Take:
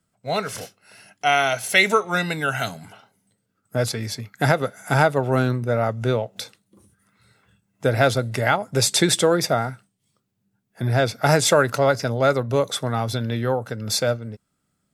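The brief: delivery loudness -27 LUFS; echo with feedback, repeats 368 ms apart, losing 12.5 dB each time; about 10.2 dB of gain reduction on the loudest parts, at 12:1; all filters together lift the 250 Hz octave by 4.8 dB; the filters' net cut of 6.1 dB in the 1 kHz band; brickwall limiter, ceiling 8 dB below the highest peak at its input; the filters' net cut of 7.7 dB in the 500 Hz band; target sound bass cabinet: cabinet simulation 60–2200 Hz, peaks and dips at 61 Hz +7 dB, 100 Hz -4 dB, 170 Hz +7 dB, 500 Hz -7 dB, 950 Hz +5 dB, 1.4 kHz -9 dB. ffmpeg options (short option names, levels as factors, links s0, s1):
-af "equalizer=f=250:t=o:g=6.5,equalizer=f=500:t=o:g=-6.5,equalizer=f=1000:t=o:g=-5.5,acompressor=threshold=0.0708:ratio=12,alimiter=limit=0.119:level=0:latency=1,highpass=f=60:w=0.5412,highpass=f=60:w=1.3066,equalizer=f=61:t=q:w=4:g=7,equalizer=f=100:t=q:w=4:g=-4,equalizer=f=170:t=q:w=4:g=7,equalizer=f=500:t=q:w=4:g=-7,equalizer=f=950:t=q:w=4:g=5,equalizer=f=1400:t=q:w=4:g=-9,lowpass=f=2200:w=0.5412,lowpass=f=2200:w=1.3066,aecho=1:1:368|736|1104:0.237|0.0569|0.0137,volume=1.5"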